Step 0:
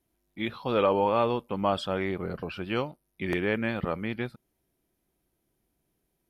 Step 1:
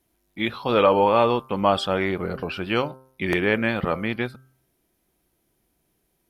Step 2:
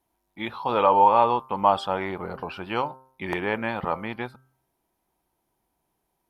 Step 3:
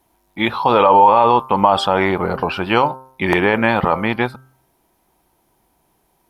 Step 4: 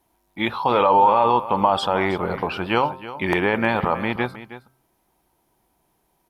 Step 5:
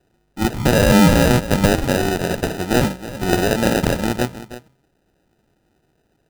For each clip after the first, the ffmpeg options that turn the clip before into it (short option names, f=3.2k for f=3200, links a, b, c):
-af "lowshelf=f=490:g=-3.5,bandreject=f=130.9:t=h:w=4,bandreject=f=261.8:t=h:w=4,bandreject=f=392.7:t=h:w=4,bandreject=f=523.6:t=h:w=4,bandreject=f=654.5:t=h:w=4,bandreject=f=785.4:t=h:w=4,bandreject=f=916.3:t=h:w=4,bandreject=f=1.0472k:t=h:w=4,bandreject=f=1.1781k:t=h:w=4,bandreject=f=1.309k:t=h:w=4,bandreject=f=1.4399k:t=h:w=4,bandreject=f=1.5708k:t=h:w=4,volume=8dB"
-af "equalizer=f=900:w=2:g=14,volume=-7.5dB"
-af "alimiter=level_in=14.5dB:limit=-1dB:release=50:level=0:latency=1,volume=-1dB"
-af "aecho=1:1:317:0.188,volume=-5dB"
-af "acrusher=samples=40:mix=1:aa=0.000001,volume=3.5dB"